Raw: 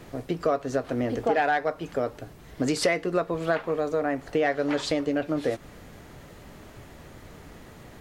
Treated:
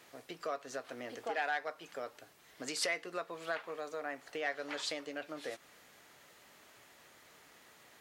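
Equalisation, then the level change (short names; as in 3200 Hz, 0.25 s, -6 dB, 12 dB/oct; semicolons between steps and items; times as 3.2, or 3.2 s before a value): LPF 1700 Hz 6 dB/oct; differentiator; +7.5 dB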